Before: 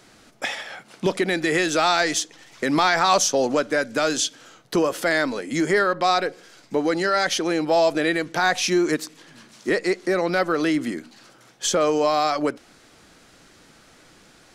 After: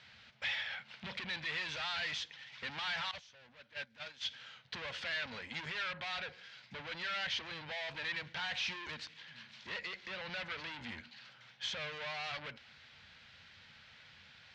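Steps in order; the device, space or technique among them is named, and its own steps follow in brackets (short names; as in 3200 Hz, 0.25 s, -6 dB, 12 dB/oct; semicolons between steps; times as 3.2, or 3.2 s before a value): scooped metal amplifier (tube stage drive 31 dB, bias 0.35; speaker cabinet 85–3700 Hz, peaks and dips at 87 Hz +9 dB, 140 Hz +4 dB, 230 Hz +8 dB, 400 Hz -4 dB, 700 Hz -5 dB, 1200 Hz -7 dB; passive tone stack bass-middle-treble 10-0-10); 3.11–4.26 gate -42 dBFS, range -17 dB; gain +4 dB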